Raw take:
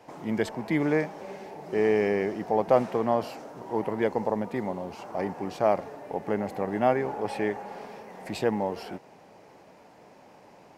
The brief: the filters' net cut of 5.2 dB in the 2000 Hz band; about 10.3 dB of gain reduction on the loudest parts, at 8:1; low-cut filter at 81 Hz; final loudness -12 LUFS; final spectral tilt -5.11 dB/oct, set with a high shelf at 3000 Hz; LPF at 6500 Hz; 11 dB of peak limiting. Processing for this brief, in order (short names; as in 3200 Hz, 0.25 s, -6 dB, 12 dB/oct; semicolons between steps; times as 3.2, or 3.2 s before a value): HPF 81 Hz; LPF 6500 Hz; bell 2000 Hz -9 dB; high shelf 3000 Hz +8 dB; compressor 8:1, threshold -27 dBFS; gain +26 dB; limiter -1 dBFS